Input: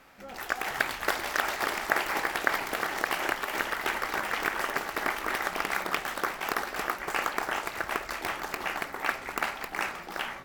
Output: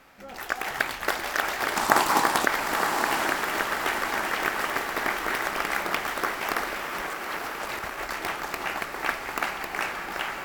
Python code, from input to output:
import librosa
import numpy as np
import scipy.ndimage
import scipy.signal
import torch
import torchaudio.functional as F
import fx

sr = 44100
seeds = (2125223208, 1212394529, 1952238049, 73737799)

y = fx.graphic_eq_10(x, sr, hz=(125, 250, 1000, 2000, 4000, 8000, 16000), db=(8, 9, 11, -5, 5, 8, 5), at=(1.76, 2.46))
y = fx.over_compress(y, sr, threshold_db=-39.0, ratio=-1.0, at=(6.72, 8.05))
y = fx.echo_diffused(y, sr, ms=924, feedback_pct=49, wet_db=-5.5)
y = y * librosa.db_to_amplitude(1.5)